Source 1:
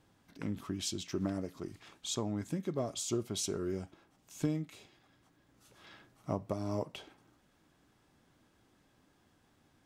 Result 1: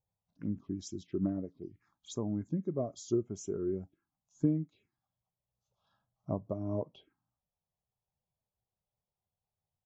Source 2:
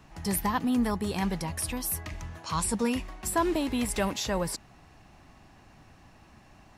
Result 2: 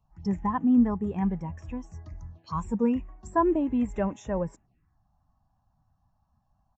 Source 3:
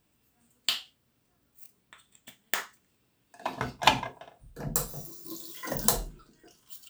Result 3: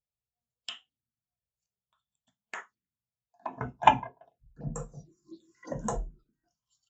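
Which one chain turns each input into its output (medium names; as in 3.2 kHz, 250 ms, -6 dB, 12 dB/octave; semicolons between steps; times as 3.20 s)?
resampled via 16 kHz; touch-sensitive phaser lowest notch 270 Hz, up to 4.5 kHz, full sweep at -33 dBFS; spectral contrast expander 1.5:1; trim +3 dB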